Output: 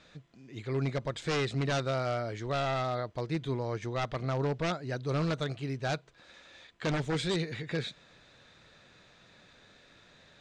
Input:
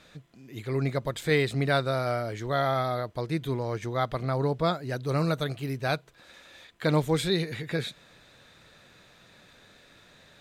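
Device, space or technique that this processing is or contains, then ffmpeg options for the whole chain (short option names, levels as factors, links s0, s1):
synthesiser wavefolder: -af "aeval=exprs='0.0891*(abs(mod(val(0)/0.0891+3,4)-2)-1)':c=same,lowpass=f=7300:w=0.5412,lowpass=f=7300:w=1.3066,volume=0.708"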